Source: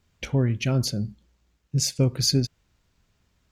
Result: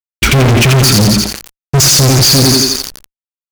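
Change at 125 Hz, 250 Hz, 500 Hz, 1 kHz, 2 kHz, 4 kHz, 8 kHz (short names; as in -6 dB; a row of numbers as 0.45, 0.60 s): +14.5, +15.0, +16.0, +25.5, +23.5, +19.5, +20.0 dB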